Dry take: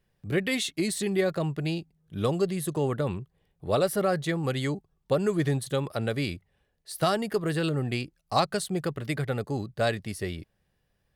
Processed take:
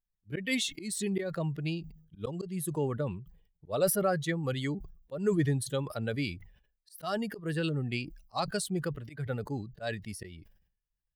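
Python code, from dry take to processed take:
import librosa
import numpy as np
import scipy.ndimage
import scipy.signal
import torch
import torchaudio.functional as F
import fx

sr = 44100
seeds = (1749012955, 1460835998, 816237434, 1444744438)

y = fx.bin_expand(x, sr, power=1.5)
y = fx.peak_eq(y, sr, hz=70.0, db=-6.0, octaves=1.1)
y = fx.auto_swell(y, sr, attack_ms=164.0)
y = fx.sustainer(y, sr, db_per_s=96.0)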